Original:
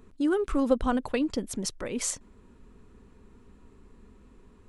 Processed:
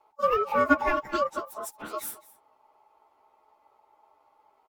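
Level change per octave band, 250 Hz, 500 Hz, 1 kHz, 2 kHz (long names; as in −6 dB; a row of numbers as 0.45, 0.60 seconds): −6.0, +1.0, +9.5, +9.0 decibels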